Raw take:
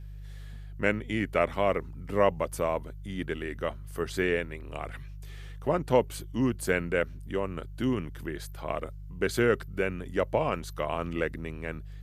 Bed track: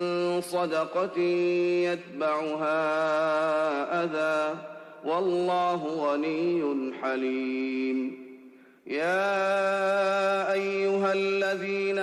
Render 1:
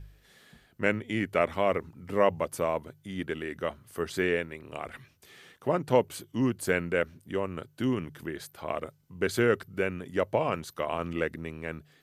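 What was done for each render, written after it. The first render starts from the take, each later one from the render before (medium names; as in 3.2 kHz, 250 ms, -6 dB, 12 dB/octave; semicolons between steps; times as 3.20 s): de-hum 50 Hz, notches 3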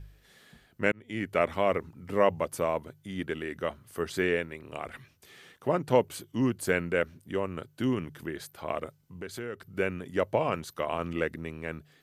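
0.92–1.51 s: fade in equal-power; 9.20–9.75 s: compression 2:1, threshold -44 dBFS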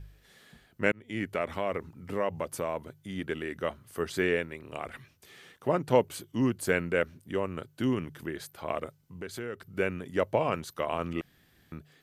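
1.25–3.24 s: compression 2:1, threshold -29 dBFS; 11.21–11.72 s: room tone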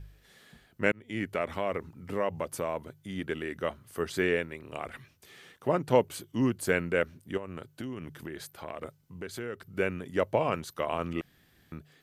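7.37–8.84 s: compression, threshold -34 dBFS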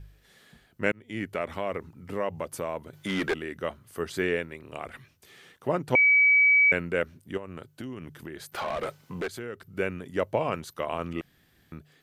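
2.93–3.34 s: overdrive pedal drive 27 dB, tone 3 kHz, clips at -18 dBFS; 5.95–6.72 s: bleep 2.28 kHz -16 dBFS; 8.52–9.28 s: overdrive pedal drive 28 dB, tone 2.9 kHz, clips at -22 dBFS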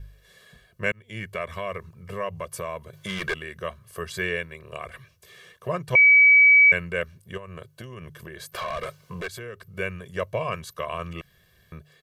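dynamic bell 500 Hz, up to -7 dB, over -41 dBFS, Q 0.96; comb 1.8 ms, depth 99%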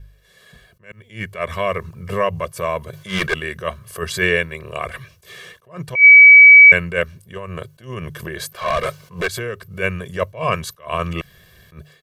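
level rider gain up to 11.5 dB; attacks held to a fixed rise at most 190 dB/s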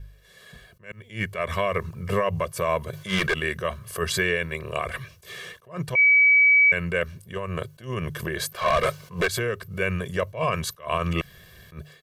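compression, threshold -13 dBFS, peak gain reduction 8.5 dB; peak limiter -13 dBFS, peak gain reduction 7.5 dB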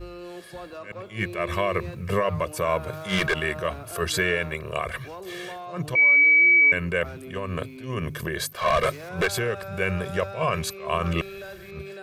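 add bed track -12.5 dB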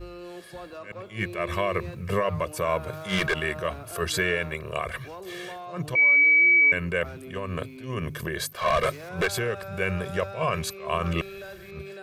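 trim -1.5 dB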